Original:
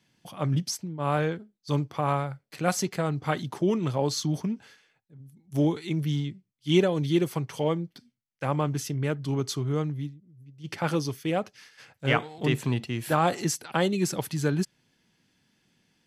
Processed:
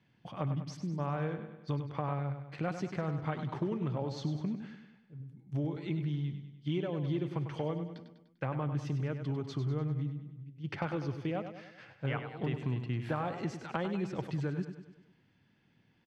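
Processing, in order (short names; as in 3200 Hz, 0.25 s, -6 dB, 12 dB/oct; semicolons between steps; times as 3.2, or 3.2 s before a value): LPF 2600 Hz 12 dB/oct; bell 110 Hz +5.5 dB 0.92 oct; compressor, threshold -30 dBFS, peak gain reduction 14.5 dB; on a send: feedback echo 99 ms, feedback 52%, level -9 dB; on the sum: gain -1.5 dB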